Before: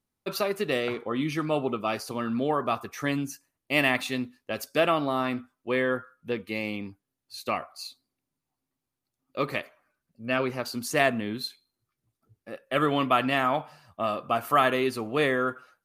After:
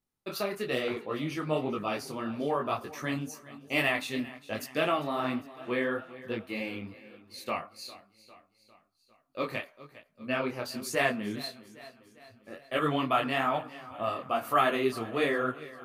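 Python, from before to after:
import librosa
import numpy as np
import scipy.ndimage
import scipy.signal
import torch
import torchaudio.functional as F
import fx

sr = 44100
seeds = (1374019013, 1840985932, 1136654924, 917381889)

p1 = x + fx.echo_feedback(x, sr, ms=402, feedback_pct=55, wet_db=-18, dry=0)
y = fx.detune_double(p1, sr, cents=38)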